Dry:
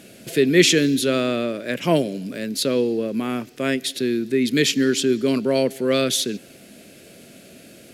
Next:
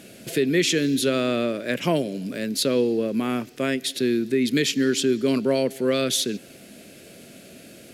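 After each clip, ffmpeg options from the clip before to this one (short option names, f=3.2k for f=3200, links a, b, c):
-af "alimiter=limit=-11.5dB:level=0:latency=1:release=332"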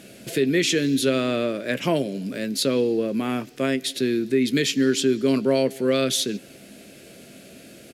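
-filter_complex "[0:a]highshelf=f=12k:g=-3,asplit=2[a][b];[b]adelay=15,volume=-13dB[c];[a][c]amix=inputs=2:normalize=0"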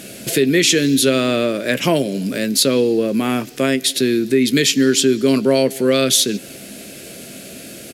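-filter_complex "[0:a]highshelf=f=5.1k:g=7.5,asplit=2[a][b];[b]acompressor=threshold=-27dB:ratio=6,volume=-2dB[c];[a][c]amix=inputs=2:normalize=0,volume=3.5dB"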